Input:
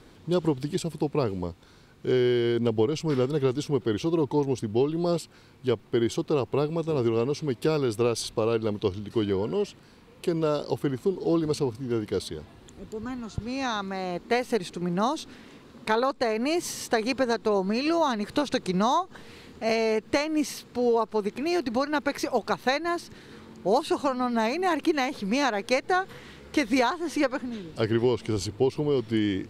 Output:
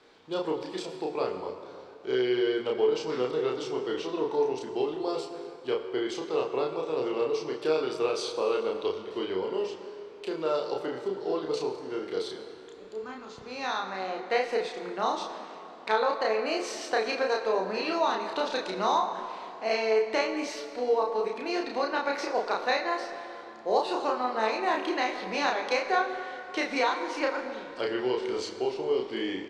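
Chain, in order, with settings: three-band isolator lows -22 dB, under 350 Hz, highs -24 dB, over 6500 Hz; doubler 32 ms -2 dB; plate-style reverb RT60 3 s, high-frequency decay 0.55×, DRR 6.5 dB; gain -3 dB

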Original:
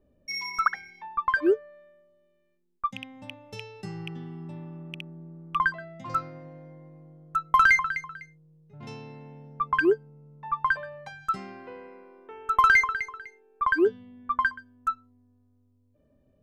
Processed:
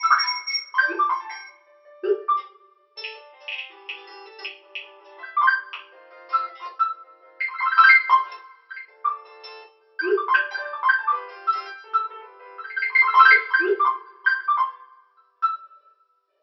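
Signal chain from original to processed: slices in reverse order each 0.185 s, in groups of 4; brick-wall FIR band-pass 330–5700 Hz; tilt shelf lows -5.5 dB, about 740 Hz; notch 650 Hz, Q 12; two-slope reverb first 0.32 s, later 1.5 s, from -27 dB, DRR -9 dB; gain -4.5 dB

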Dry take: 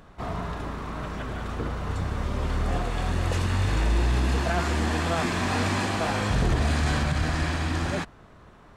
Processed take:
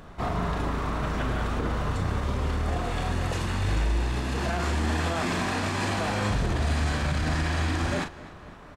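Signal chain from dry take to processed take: limiter -23.5 dBFS, peak gain reduction 11 dB; doubler 39 ms -8 dB; tape echo 0.254 s, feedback 64%, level -17 dB, low-pass 5200 Hz; gain +4 dB

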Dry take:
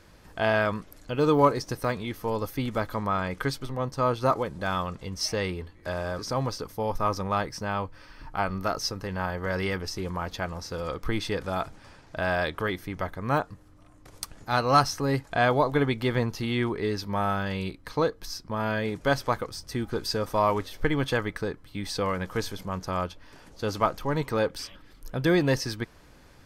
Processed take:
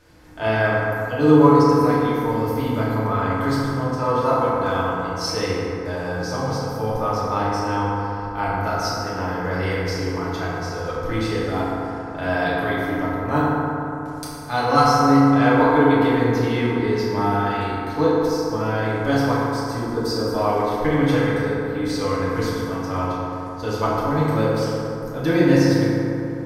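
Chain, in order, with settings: 19.74–20.34 band shelf 2500 Hz -8 dB 1.1 oct; FDN reverb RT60 3.3 s, high-frequency decay 0.35×, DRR -9 dB; gain -4 dB

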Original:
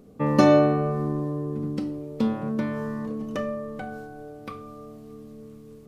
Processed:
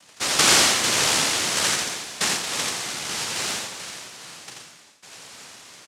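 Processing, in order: median filter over 25 samples; 0.83–1.75 bell 220 Hz +11 dB 1.1 oct; 3.08–3.58 sample leveller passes 1; 4.43–5.02 fade out; noise vocoder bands 1; echo 85 ms -3.5 dB; gain -1.5 dB

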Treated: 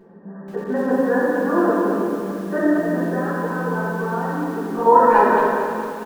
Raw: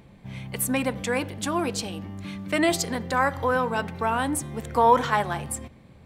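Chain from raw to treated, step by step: FFT band-pass 160–1900 Hz; reverb removal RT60 0.71 s; bell 410 Hz +13 dB 0.21 oct; 2.61–4.86 compressor 10:1, threshold -29 dBFS, peak gain reduction 15.5 dB; speakerphone echo 0.24 s, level -11 dB; reverb RT60 2.0 s, pre-delay 5 ms, DRR -10.5 dB; lo-fi delay 0.225 s, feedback 55%, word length 6-bit, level -8 dB; gain -3 dB

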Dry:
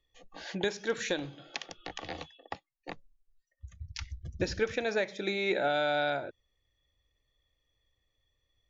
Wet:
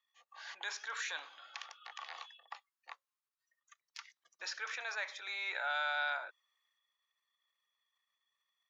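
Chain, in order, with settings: transient shaper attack -5 dB, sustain +5 dB; ladder high-pass 960 Hz, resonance 55%; gain +4.5 dB

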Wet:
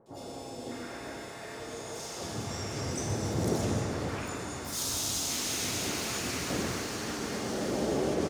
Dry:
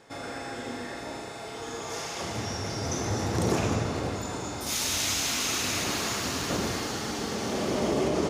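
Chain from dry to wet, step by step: harmoniser +5 st -7 dB; three bands offset in time lows, highs, mids 60/600 ms, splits 970/3000 Hz; gain -3.5 dB

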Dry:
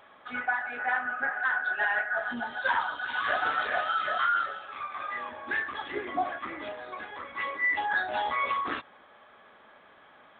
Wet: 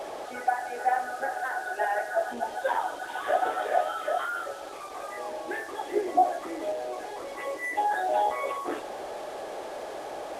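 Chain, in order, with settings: delta modulation 64 kbps, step -33.5 dBFS; band shelf 510 Hz +15.5 dB; gain -7 dB

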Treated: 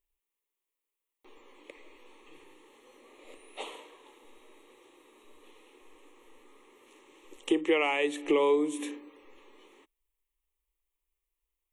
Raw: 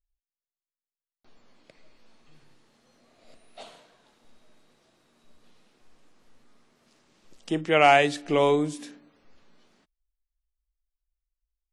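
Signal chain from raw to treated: resonant low shelf 200 Hz -13 dB, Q 1.5; compressor 5:1, threshold -31 dBFS, peak gain reduction 16.5 dB; fixed phaser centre 1000 Hz, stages 8; gain +9 dB

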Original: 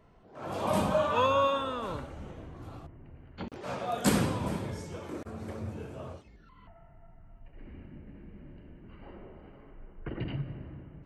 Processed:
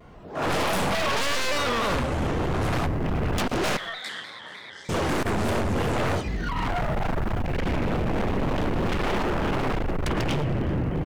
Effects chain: recorder AGC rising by 13 dB/s; in parallel at -1 dB: limiter -21.5 dBFS, peak gain reduction 9 dB; on the sum: one-sided clip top -29.5 dBFS; 3.77–4.89 double band-pass 2600 Hz, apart 0.82 oct; wavefolder -27 dBFS; echo 0.118 s -19.5 dB; on a send at -22 dB: reverb, pre-delay 10 ms; on the sum: shaped vibrato square 3.3 Hz, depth 100 cents; gain +6 dB

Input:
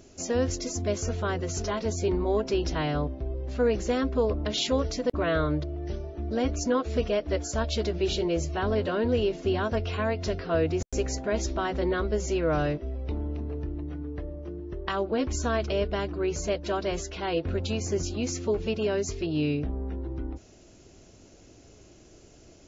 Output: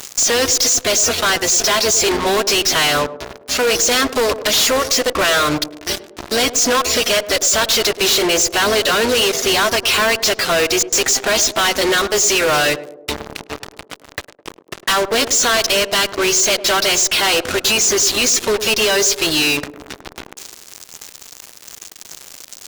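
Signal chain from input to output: reverb removal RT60 0.53 s; buzz 400 Hz, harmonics 17, -63 dBFS -8 dB/oct; differentiator; fuzz box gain 61 dB, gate -59 dBFS; narrowing echo 0.104 s, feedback 60%, band-pass 390 Hz, level -11 dB

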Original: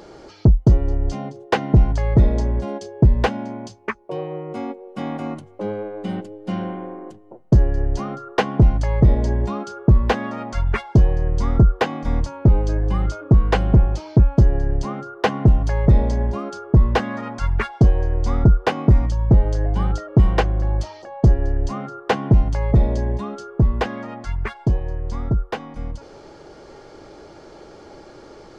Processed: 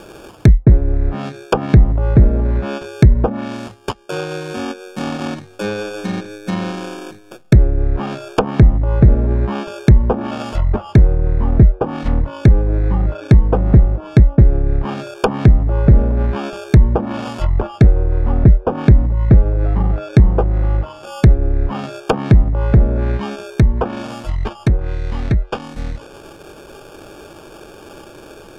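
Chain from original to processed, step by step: sample-and-hold 22×; treble ducked by the level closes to 720 Hz, closed at -14 dBFS; gain +4.5 dB

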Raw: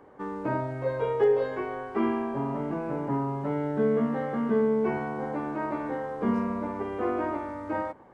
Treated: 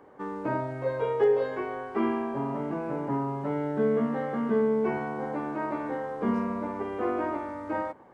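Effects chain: low shelf 89 Hz -7.5 dB

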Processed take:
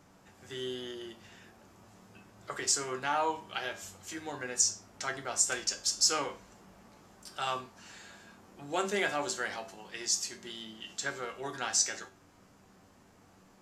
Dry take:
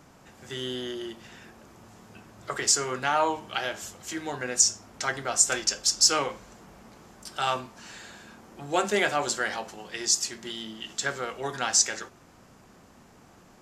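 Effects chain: resonator 96 Hz, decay 0.29 s, harmonics all, mix 70%

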